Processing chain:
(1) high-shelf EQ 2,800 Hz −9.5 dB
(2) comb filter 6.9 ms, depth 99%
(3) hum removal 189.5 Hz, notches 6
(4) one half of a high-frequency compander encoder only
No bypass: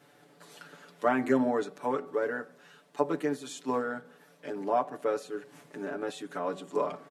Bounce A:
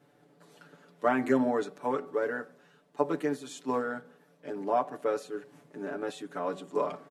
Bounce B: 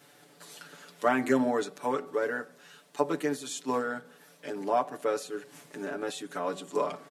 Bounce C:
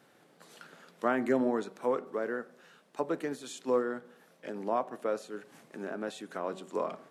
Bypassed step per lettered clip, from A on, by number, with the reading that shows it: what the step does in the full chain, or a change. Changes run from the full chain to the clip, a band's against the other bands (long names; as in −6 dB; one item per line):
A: 4, 8 kHz band −2.0 dB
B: 1, 8 kHz band +6.0 dB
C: 2, 125 Hz band −2.0 dB